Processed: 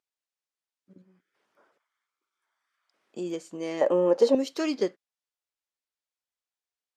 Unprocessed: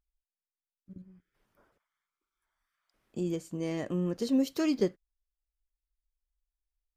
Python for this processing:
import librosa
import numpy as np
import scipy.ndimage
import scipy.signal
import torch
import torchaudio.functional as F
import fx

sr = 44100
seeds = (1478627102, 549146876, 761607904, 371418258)

y = fx.bandpass_edges(x, sr, low_hz=360.0, high_hz=7700.0)
y = fx.small_body(y, sr, hz=(560.0, 840.0), ring_ms=20, db=18, at=(3.81, 4.35))
y = y * librosa.db_to_amplitude(4.0)